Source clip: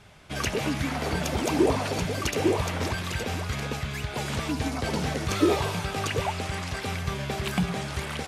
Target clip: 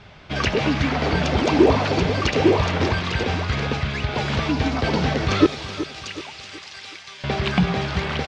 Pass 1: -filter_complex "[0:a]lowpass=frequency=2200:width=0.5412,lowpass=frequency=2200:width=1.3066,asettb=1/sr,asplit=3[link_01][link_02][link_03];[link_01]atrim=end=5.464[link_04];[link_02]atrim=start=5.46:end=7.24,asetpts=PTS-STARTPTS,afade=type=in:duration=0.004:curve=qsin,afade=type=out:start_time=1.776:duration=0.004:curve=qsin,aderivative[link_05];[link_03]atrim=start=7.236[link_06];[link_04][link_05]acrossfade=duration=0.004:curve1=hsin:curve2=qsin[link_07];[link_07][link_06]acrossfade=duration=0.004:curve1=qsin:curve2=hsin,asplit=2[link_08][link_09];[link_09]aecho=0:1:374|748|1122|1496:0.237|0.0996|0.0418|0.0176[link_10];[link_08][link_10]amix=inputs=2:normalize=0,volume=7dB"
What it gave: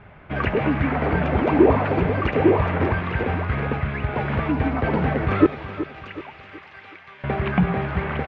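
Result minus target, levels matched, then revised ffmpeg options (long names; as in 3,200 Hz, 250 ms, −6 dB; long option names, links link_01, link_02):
4,000 Hz band −13.5 dB
-filter_complex "[0:a]lowpass=frequency=5100:width=0.5412,lowpass=frequency=5100:width=1.3066,asettb=1/sr,asplit=3[link_01][link_02][link_03];[link_01]atrim=end=5.464[link_04];[link_02]atrim=start=5.46:end=7.24,asetpts=PTS-STARTPTS,afade=type=in:duration=0.004:curve=qsin,afade=type=out:start_time=1.776:duration=0.004:curve=qsin,aderivative[link_05];[link_03]atrim=start=7.236[link_06];[link_04][link_05]acrossfade=duration=0.004:curve1=hsin:curve2=qsin[link_07];[link_07][link_06]acrossfade=duration=0.004:curve1=qsin:curve2=hsin,asplit=2[link_08][link_09];[link_09]aecho=0:1:374|748|1122|1496:0.237|0.0996|0.0418|0.0176[link_10];[link_08][link_10]amix=inputs=2:normalize=0,volume=7dB"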